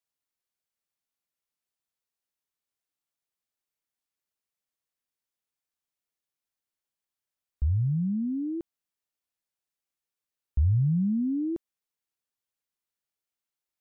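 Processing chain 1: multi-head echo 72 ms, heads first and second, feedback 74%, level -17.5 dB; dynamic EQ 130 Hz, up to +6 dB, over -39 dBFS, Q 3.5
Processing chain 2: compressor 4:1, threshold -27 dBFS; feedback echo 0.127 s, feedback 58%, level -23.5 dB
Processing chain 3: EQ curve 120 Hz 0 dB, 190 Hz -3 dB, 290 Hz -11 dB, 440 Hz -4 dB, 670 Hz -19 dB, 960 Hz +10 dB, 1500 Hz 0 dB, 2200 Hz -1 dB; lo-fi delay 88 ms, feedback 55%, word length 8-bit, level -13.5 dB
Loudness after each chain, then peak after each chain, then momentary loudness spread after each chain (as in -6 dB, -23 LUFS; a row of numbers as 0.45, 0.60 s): -26.0, -31.5, -29.0 LUFS; -12.5, -20.0, -16.5 dBFS; 21, 9, 18 LU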